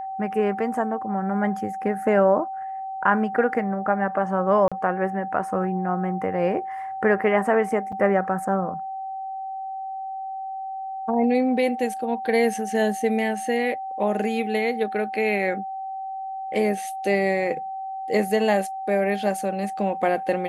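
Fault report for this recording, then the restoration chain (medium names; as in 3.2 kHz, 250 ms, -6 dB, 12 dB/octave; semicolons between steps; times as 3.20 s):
whine 770 Hz -29 dBFS
4.68–4.72 s: dropout 36 ms
7.92–7.93 s: dropout 5.9 ms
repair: band-stop 770 Hz, Q 30; interpolate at 4.68 s, 36 ms; interpolate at 7.92 s, 5.9 ms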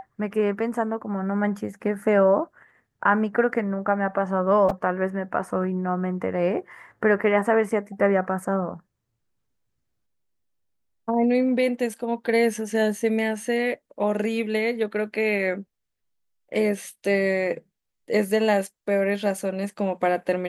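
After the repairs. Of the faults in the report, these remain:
nothing left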